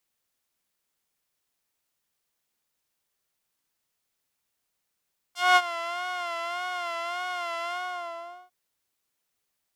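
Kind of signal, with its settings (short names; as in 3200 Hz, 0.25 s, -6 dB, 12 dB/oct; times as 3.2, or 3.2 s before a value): synth patch with vibrato F5, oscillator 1 saw, oscillator 2 square, interval +7 st, detune 17 cents, oscillator 2 level -12 dB, sub -19.5 dB, noise -17 dB, filter bandpass, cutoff 610 Hz, Q 0.85, filter envelope 3.5 oct, filter decay 0.08 s, attack 0.21 s, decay 0.05 s, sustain -15.5 dB, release 0.80 s, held 2.35 s, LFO 1.7 Hz, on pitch 67 cents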